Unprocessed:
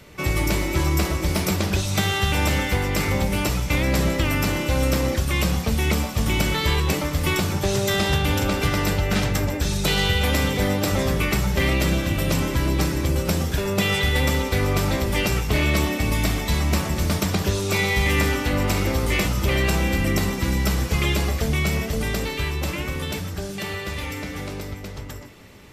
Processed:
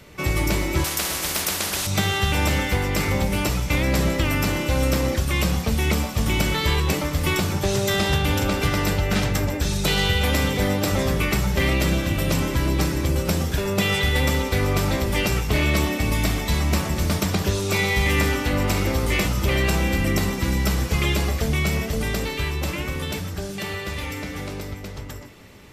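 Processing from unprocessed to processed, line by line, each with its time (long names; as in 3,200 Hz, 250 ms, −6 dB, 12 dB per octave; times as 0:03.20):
0:00.84–0:01.87: every bin compressed towards the loudest bin 4 to 1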